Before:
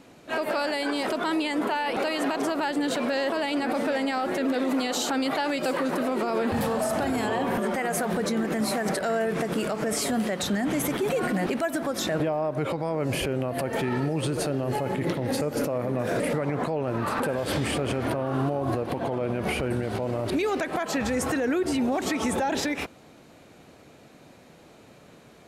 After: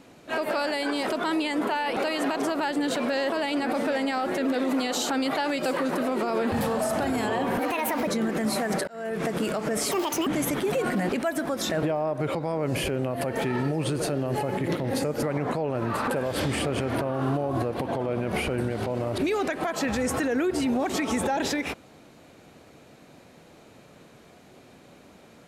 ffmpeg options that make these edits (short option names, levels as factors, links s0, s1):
-filter_complex "[0:a]asplit=7[s0][s1][s2][s3][s4][s5][s6];[s0]atrim=end=7.594[s7];[s1]atrim=start=7.59:end=8.23,asetpts=PTS-STARTPTS,asetrate=58212,aresample=44100[s8];[s2]atrim=start=8.226:end=9.03,asetpts=PTS-STARTPTS,afade=t=out:st=0.8:d=0.004:c=hsin[s9];[s3]atrim=start=9.03:end=10.074,asetpts=PTS-STARTPTS,afade=t=in:d=0.38[s10];[s4]atrim=start=10.07:end=10.64,asetpts=PTS-STARTPTS,asetrate=71442,aresample=44100[s11];[s5]atrim=start=10.636:end=15.602[s12];[s6]atrim=start=16.348[s13];[s7][s8]acrossfade=d=0.004:c1=hsin:c2=hsin[s14];[s9][s10]concat=n=2:v=0:a=1[s15];[s14][s15]acrossfade=d=0.004:c1=hsin:c2=hsin[s16];[s16][s11]acrossfade=d=0.004:c1=hsin:c2=hsin[s17];[s17][s12]acrossfade=d=0.004:c1=hsin:c2=hsin[s18];[s18][s13]acrossfade=d=0.004:c1=hsin:c2=hsin"